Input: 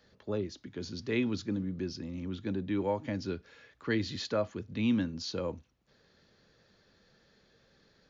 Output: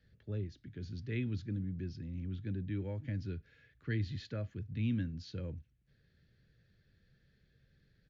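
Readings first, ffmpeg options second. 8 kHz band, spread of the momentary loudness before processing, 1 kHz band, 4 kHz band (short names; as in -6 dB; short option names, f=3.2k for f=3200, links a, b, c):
n/a, 9 LU, -19.0 dB, -12.5 dB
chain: -af "firequalizer=gain_entry='entry(140,0);entry(200,-11);entry(1000,-28);entry(1600,-11);entry(6000,-21)':delay=0.05:min_phase=1,volume=4dB"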